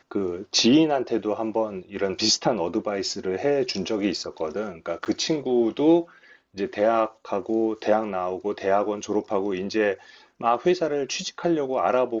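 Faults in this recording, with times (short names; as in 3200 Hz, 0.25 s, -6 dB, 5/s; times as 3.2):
5.05–5.06 gap 8.6 ms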